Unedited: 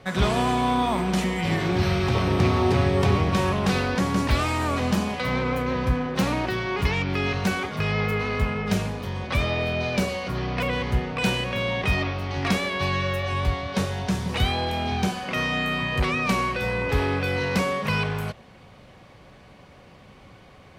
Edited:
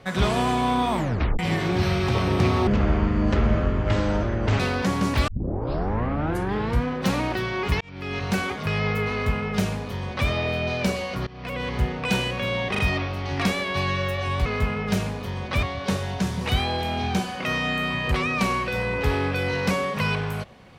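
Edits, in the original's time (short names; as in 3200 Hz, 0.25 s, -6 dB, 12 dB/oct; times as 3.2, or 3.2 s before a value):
0.96 tape stop 0.43 s
2.67–3.73 speed 55%
4.41 tape start 1.57 s
6.94–7.48 fade in
8.25–9.42 copy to 13.51
10.4–10.92 fade in, from -21 dB
11.84 stutter 0.04 s, 3 plays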